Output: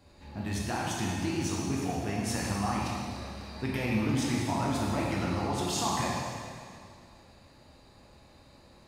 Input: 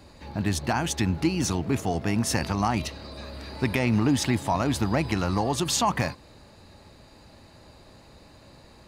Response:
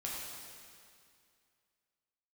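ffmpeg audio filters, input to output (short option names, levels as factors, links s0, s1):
-filter_complex "[1:a]atrim=start_sample=2205[s0];[0:a][s0]afir=irnorm=-1:irlink=0,volume=0.473"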